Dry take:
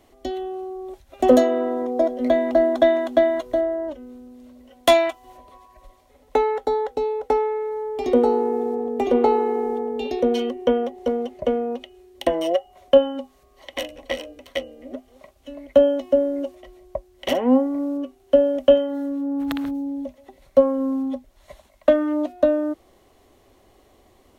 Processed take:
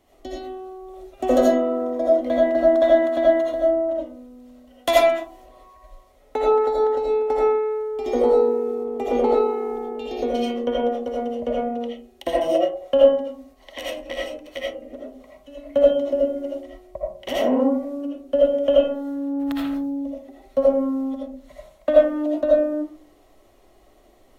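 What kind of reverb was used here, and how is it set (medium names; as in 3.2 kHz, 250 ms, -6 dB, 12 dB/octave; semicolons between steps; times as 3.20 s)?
algorithmic reverb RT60 0.45 s, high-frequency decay 0.35×, pre-delay 40 ms, DRR -5 dB; trim -6.5 dB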